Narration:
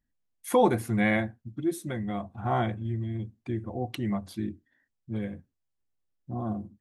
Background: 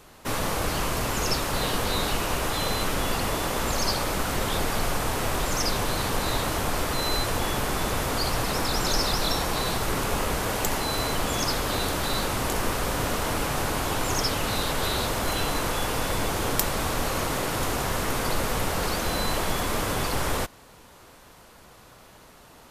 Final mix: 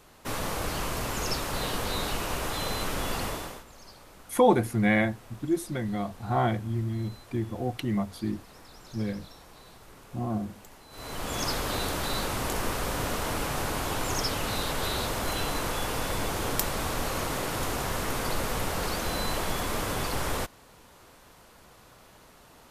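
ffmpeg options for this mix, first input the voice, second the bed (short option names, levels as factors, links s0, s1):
-filter_complex "[0:a]adelay=3850,volume=1.19[s0];[1:a]volume=6.68,afade=t=out:st=3.23:d=0.41:silence=0.1,afade=t=in:st=10.9:d=0.56:silence=0.0891251[s1];[s0][s1]amix=inputs=2:normalize=0"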